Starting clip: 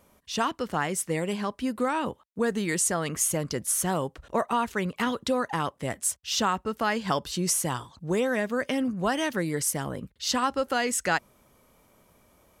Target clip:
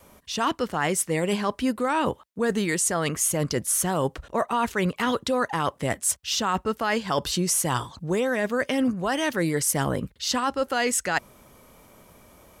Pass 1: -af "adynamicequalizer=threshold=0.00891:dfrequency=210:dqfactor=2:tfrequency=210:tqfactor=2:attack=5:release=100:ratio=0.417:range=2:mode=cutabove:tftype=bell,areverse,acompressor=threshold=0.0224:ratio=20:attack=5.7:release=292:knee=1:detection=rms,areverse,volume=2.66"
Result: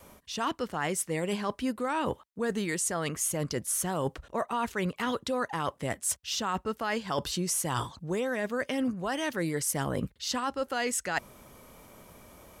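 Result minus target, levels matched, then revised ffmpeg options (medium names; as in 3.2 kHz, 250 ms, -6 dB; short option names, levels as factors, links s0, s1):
compression: peak gain reduction +6 dB
-af "adynamicequalizer=threshold=0.00891:dfrequency=210:dqfactor=2:tfrequency=210:tqfactor=2:attack=5:release=100:ratio=0.417:range=2:mode=cutabove:tftype=bell,areverse,acompressor=threshold=0.0473:ratio=20:attack=5.7:release=292:knee=1:detection=rms,areverse,volume=2.66"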